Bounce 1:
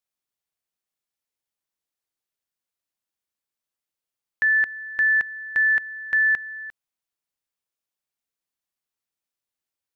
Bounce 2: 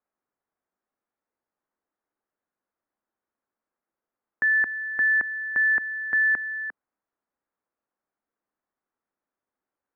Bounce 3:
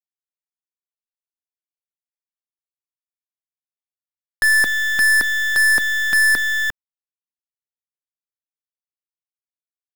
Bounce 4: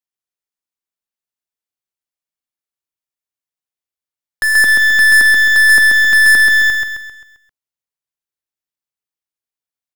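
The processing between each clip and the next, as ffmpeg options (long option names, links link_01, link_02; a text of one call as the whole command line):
ffmpeg -i in.wav -filter_complex "[0:a]lowpass=frequency=1600:width=0.5412,lowpass=frequency=1600:width=1.3066,acrossover=split=310[link_01][link_02];[link_02]alimiter=level_in=2dB:limit=-24dB:level=0:latency=1:release=34,volume=-2dB[link_03];[link_01][link_03]amix=inputs=2:normalize=0,lowshelf=frequency=180:width_type=q:width=1.5:gain=-6.5,volume=8.5dB" out.wav
ffmpeg -i in.wav -af "acrusher=bits=8:dc=4:mix=0:aa=0.000001,aeval=exprs='0.15*(cos(1*acos(clip(val(0)/0.15,-1,1)))-cos(1*PI/2))+0.0266*(cos(5*acos(clip(val(0)/0.15,-1,1)))-cos(5*PI/2))+0.00376*(cos(7*acos(clip(val(0)/0.15,-1,1)))-cos(7*PI/2))+0.0237*(cos(8*acos(clip(val(0)/0.15,-1,1)))-cos(8*PI/2))':channel_layout=same,acontrast=87" out.wav
ffmpeg -i in.wav -filter_complex "[0:a]asplit=2[link_01][link_02];[link_02]asoftclip=type=hard:threshold=-22dB,volume=-12dB[link_03];[link_01][link_03]amix=inputs=2:normalize=0,aecho=1:1:132|264|396|528|660|792:0.708|0.326|0.15|0.0689|0.0317|0.0146" out.wav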